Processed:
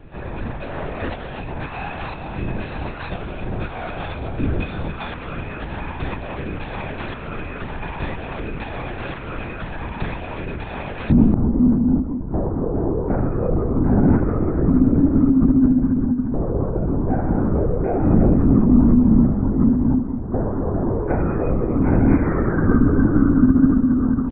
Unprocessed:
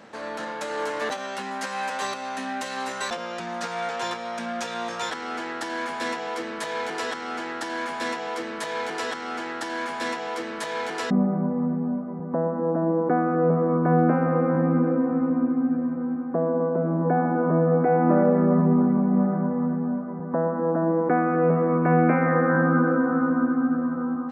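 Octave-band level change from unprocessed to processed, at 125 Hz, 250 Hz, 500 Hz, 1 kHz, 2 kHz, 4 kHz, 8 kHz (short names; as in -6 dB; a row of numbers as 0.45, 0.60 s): +7.0 dB, +6.0 dB, -1.5 dB, -4.5 dB, -3.0 dB, n/a, under -35 dB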